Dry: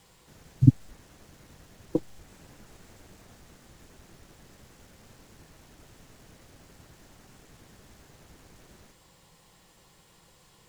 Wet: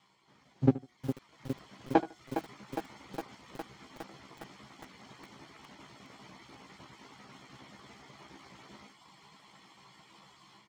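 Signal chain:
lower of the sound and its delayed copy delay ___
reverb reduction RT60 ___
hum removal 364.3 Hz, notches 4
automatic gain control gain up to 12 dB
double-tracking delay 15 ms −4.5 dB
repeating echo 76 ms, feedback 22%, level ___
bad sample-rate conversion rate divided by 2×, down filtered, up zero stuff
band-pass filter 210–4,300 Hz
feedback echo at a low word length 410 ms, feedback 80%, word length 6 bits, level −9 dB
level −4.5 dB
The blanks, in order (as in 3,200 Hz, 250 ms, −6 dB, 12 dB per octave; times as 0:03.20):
0.92 ms, 0.97 s, −17.5 dB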